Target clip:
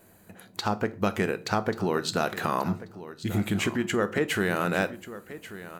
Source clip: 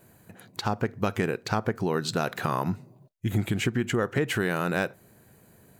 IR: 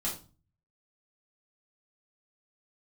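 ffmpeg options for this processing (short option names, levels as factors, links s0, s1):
-filter_complex "[0:a]equalizer=f=130:t=o:w=0.41:g=-13,aecho=1:1:1136|2272:0.178|0.0285,asplit=2[s0][s1];[1:a]atrim=start_sample=2205[s2];[s1][s2]afir=irnorm=-1:irlink=0,volume=0.188[s3];[s0][s3]amix=inputs=2:normalize=0"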